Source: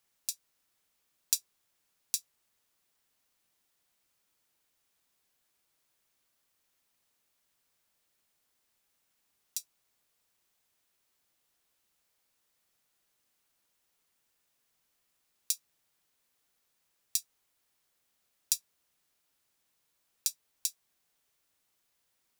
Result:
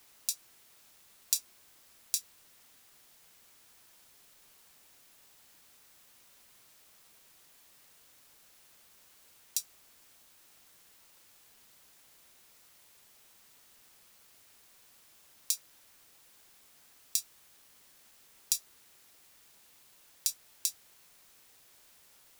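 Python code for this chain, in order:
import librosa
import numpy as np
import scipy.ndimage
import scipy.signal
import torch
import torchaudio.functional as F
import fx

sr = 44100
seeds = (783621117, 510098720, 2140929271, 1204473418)

p1 = fx.over_compress(x, sr, threshold_db=-36.0, ratio=-1.0)
p2 = x + (p1 * 10.0 ** (-2.0 / 20.0))
p3 = fx.highpass(p2, sr, hz=820.0, slope=6)
p4 = fx.quant_dither(p3, sr, seeds[0], bits=10, dither='triangular')
y = p4 * 10.0 ** (-1.5 / 20.0)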